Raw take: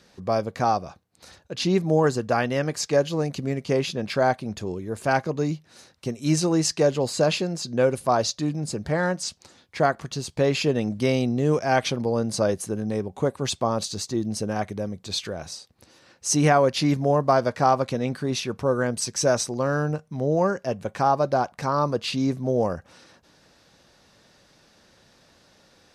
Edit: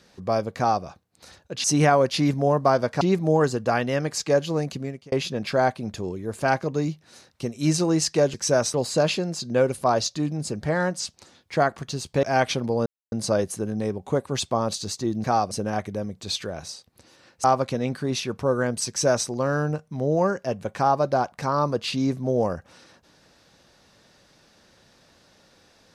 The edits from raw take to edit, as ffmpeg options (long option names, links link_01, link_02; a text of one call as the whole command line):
ffmpeg -i in.wav -filter_complex "[0:a]asplit=11[link_01][link_02][link_03][link_04][link_05][link_06][link_07][link_08][link_09][link_10][link_11];[link_01]atrim=end=1.642[link_12];[link_02]atrim=start=16.268:end=17.642[link_13];[link_03]atrim=start=1.638:end=3.75,asetpts=PTS-STARTPTS,afade=type=out:start_time=1.682:duration=0.43[link_14];[link_04]atrim=start=3.75:end=6.972,asetpts=PTS-STARTPTS,afade=type=in:duration=0.004:curve=hsin[link_15];[link_05]atrim=start=19.078:end=19.482[link_16];[link_06]atrim=start=6.968:end=10.462[link_17];[link_07]atrim=start=11.588:end=12.22,asetpts=PTS-STARTPTS,afade=type=out:start_time=0.628:duration=0.004:curve=hsin,apad=pad_dur=0.26[link_18];[link_08]atrim=start=12.22:end=14.342,asetpts=PTS-STARTPTS,afade=type=in:duration=0.004:curve=hsin[link_19];[link_09]atrim=start=0.568:end=0.842[link_20];[link_10]atrim=start=14.338:end=16.272[link_21];[link_11]atrim=start=17.638[link_22];[link_12][link_13]acrossfade=duration=0.004:curve1=hsin:curve2=hsin[link_23];[link_14][link_15]concat=n=2:v=0:a=1[link_24];[link_23][link_24]acrossfade=duration=0.004:curve1=hsin:curve2=hsin[link_25];[link_25][link_16]acrossfade=duration=0.004:curve1=hsin:curve2=hsin[link_26];[link_26][link_17]acrossfade=duration=0.004:curve1=hsin:curve2=hsin[link_27];[link_18][link_19]concat=n=2:v=0:a=1[link_28];[link_27][link_28]acrossfade=duration=0.004:curve1=hsin:curve2=hsin[link_29];[link_29][link_20]acrossfade=duration=0.004:curve1=hsin:curve2=hsin[link_30];[link_30][link_21]acrossfade=duration=0.004:curve1=hsin:curve2=hsin[link_31];[link_31][link_22]acrossfade=duration=0.004:curve1=hsin:curve2=hsin" out.wav